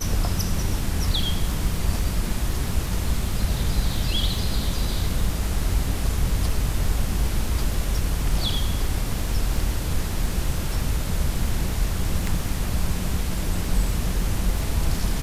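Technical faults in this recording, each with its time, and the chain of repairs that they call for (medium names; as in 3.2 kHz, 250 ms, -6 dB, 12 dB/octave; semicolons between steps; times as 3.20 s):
crackle 32 per s -30 dBFS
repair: de-click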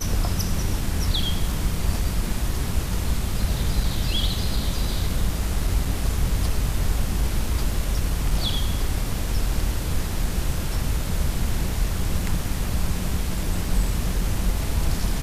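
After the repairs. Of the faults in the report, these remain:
nothing left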